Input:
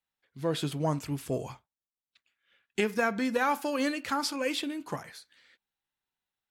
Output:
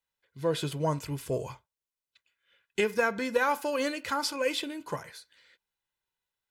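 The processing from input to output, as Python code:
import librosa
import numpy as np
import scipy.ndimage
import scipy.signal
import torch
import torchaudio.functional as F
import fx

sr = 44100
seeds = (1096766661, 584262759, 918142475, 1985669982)

y = x + 0.44 * np.pad(x, (int(2.0 * sr / 1000.0), 0))[:len(x)]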